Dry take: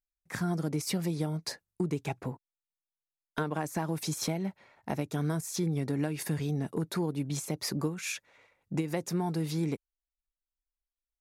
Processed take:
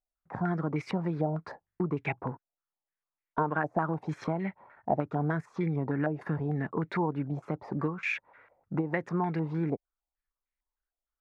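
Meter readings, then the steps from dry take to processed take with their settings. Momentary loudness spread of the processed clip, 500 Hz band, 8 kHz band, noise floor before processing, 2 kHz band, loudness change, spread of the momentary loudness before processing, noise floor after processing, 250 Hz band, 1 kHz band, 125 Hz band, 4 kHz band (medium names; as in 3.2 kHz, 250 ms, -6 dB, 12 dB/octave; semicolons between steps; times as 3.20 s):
7 LU, +2.5 dB, under -20 dB, under -85 dBFS, +5.0 dB, +1.0 dB, 7 LU, under -85 dBFS, +0.5 dB, +6.5 dB, 0.0 dB, -13.0 dB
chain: step-sequenced low-pass 6.6 Hz 710–2100 Hz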